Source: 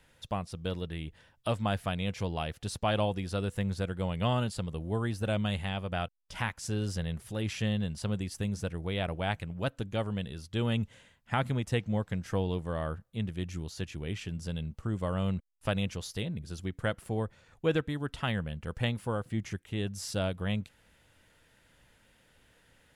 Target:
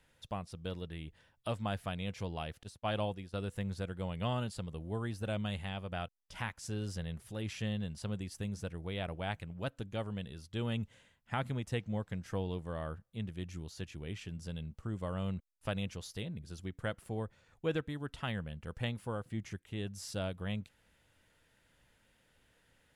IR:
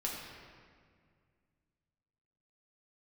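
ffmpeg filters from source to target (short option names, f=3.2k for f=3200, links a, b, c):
-filter_complex "[0:a]asettb=1/sr,asplit=3[a][b][c];[a]atrim=end=2.634[d];[b]atrim=start=2.63:end=3.34,asetpts=PTS-STARTPTS,afade=t=in:d=0.004:c=qsin,afade=t=out:st=0.706:d=0.004:c=qsin,agate=range=-33dB:threshold=-28dB:ratio=3:detection=peak[e];[c]atrim=start=3.336[f];[d][e]acrossfade=d=0.004:c1=hsin:c2=qsin[g];[g][f]acrossfade=d=0.004:c1=qsin:c2=hsin,volume=-6dB"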